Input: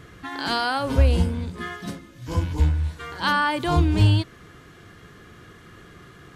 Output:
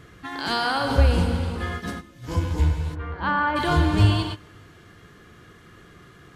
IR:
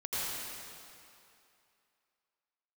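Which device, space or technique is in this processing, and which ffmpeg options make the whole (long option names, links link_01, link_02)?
keyed gated reverb: -filter_complex "[0:a]asplit=3[link_01][link_02][link_03];[1:a]atrim=start_sample=2205[link_04];[link_02][link_04]afir=irnorm=-1:irlink=0[link_05];[link_03]apad=whole_len=280195[link_06];[link_05][link_06]sidechaingate=range=-22dB:threshold=-36dB:ratio=16:detection=peak,volume=-7.5dB[link_07];[link_01][link_07]amix=inputs=2:normalize=0,asplit=3[link_08][link_09][link_10];[link_08]afade=type=out:start_time=2.94:duration=0.02[link_11];[link_09]lowpass=1700,afade=type=in:start_time=2.94:duration=0.02,afade=type=out:start_time=3.55:duration=0.02[link_12];[link_10]afade=type=in:start_time=3.55:duration=0.02[link_13];[link_11][link_12][link_13]amix=inputs=3:normalize=0,volume=-2.5dB"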